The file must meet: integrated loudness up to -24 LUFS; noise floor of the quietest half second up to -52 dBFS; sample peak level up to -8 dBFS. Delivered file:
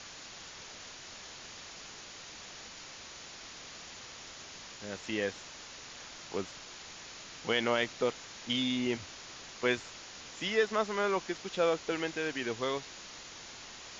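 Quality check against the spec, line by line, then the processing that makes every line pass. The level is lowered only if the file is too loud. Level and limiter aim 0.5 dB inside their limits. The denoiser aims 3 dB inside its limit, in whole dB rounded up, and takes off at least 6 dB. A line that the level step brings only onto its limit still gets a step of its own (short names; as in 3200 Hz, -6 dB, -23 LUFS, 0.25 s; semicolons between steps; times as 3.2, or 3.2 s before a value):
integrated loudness -36.0 LUFS: OK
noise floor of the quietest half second -48 dBFS: fail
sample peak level -15.0 dBFS: OK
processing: denoiser 7 dB, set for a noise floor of -48 dBFS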